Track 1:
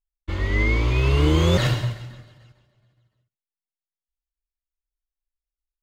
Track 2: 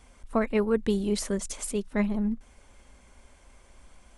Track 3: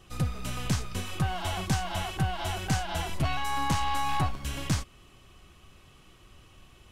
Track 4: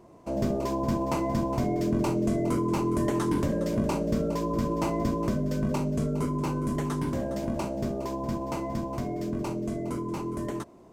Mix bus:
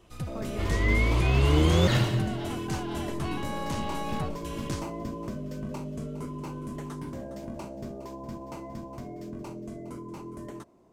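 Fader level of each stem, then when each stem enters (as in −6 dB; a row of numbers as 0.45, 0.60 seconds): −3.5, −16.5, −6.5, −8.0 decibels; 0.30, 0.00, 0.00, 0.00 seconds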